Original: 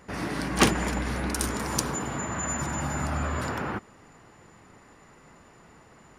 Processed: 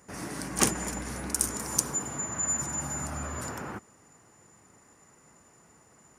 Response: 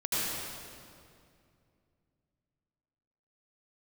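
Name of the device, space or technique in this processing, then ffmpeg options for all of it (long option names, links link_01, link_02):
budget condenser microphone: -af "highpass=62,highshelf=frequency=5200:width_type=q:width=1.5:gain=9.5,volume=-6.5dB"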